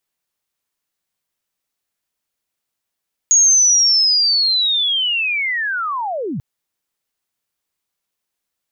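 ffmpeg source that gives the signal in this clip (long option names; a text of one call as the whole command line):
ffmpeg -f lavfi -i "aevalsrc='pow(10,(-8-13*t/3.09)/20)*sin(2*PI*(6700*t-6590*t*t/(2*3.09)))':duration=3.09:sample_rate=44100" out.wav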